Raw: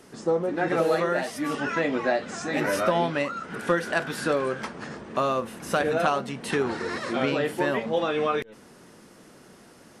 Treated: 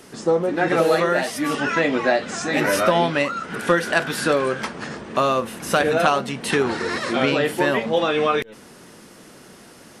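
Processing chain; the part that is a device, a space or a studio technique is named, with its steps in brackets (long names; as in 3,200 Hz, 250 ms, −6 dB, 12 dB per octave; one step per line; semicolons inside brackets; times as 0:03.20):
presence and air boost (parametric band 3,200 Hz +3 dB 1.7 octaves; high-shelf EQ 9,400 Hz +6 dB)
level +5 dB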